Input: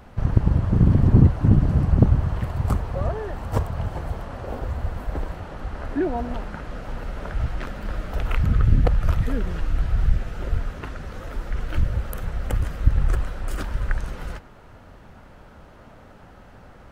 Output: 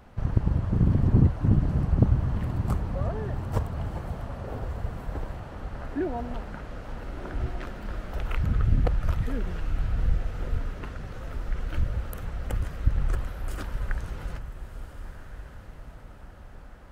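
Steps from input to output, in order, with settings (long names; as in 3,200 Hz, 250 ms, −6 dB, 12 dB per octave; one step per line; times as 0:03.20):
feedback delay with all-pass diffusion 1,376 ms, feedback 41%, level −11 dB
level −5.5 dB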